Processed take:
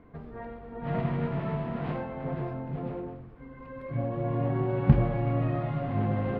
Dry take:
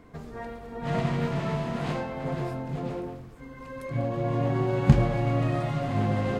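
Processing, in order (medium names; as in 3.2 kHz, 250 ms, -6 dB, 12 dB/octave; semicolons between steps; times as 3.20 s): distance through air 440 m; trim -1.5 dB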